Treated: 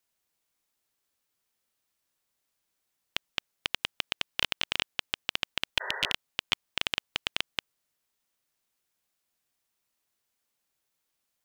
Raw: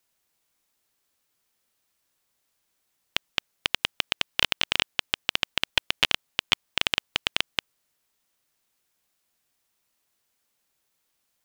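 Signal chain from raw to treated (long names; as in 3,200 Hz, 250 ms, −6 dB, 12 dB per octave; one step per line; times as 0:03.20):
healed spectral selection 0:05.83–0:06.09, 370–2,000 Hz
level −5.5 dB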